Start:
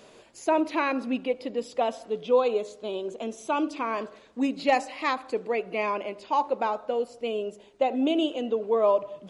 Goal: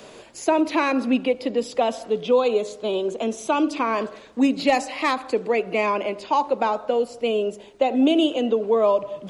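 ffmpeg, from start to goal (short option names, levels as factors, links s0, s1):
-filter_complex "[0:a]acrossover=split=250|3000[s0][s1][s2];[s1]acompressor=threshold=0.0355:ratio=2[s3];[s0][s3][s2]amix=inputs=3:normalize=0,acrossover=split=350|1100[s4][s5][s6];[s6]asoftclip=type=tanh:threshold=0.0501[s7];[s4][s5][s7]amix=inputs=3:normalize=0,volume=2.66"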